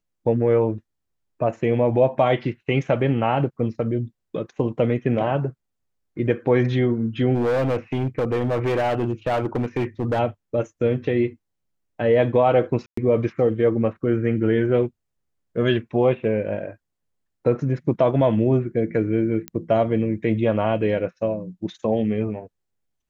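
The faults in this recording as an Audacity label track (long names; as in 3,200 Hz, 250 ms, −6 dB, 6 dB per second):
7.340000	10.200000	clipping −18 dBFS
12.860000	12.970000	drop-out 114 ms
19.480000	19.480000	click −14 dBFS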